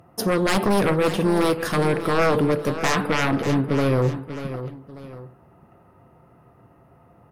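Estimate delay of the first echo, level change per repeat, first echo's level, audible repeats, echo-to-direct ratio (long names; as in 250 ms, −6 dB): 590 ms, −8.0 dB, −11.5 dB, 2, −11.0 dB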